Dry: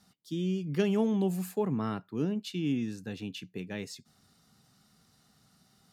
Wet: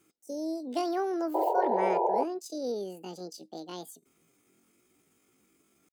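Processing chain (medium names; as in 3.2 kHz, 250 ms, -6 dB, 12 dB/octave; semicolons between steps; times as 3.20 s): pitch shift +9.5 st; painted sound noise, 1.34–2.24 s, 350–1000 Hz -24 dBFS; trim -3 dB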